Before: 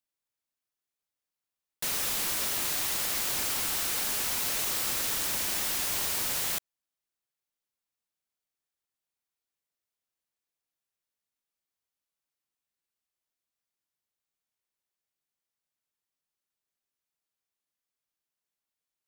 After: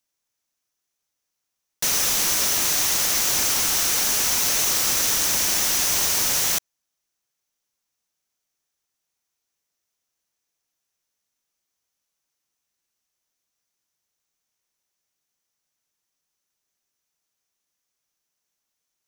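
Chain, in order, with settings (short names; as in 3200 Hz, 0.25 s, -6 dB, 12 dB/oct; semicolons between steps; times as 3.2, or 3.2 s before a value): bell 6000 Hz +9 dB 0.35 oct; gain +7.5 dB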